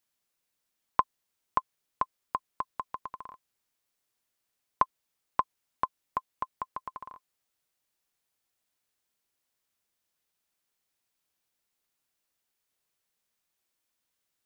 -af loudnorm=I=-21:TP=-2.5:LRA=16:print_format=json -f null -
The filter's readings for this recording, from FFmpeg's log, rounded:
"input_i" : "-35.6",
"input_tp" : "-8.2",
"input_lra" : "7.1",
"input_thresh" : "-46.1",